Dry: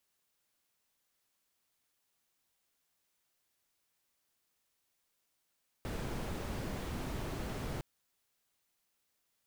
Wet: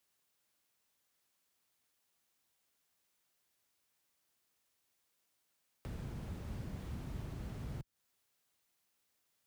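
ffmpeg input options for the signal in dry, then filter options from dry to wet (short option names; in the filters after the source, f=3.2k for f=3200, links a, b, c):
-f lavfi -i "anoisesrc=c=brown:a=0.0556:d=1.96:r=44100:seed=1"
-filter_complex "[0:a]highpass=42,acrossover=split=200[a][b];[b]acompressor=threshold=-53dB:ratio=6[c];[a][c]amix=inputs=2:normalize=0"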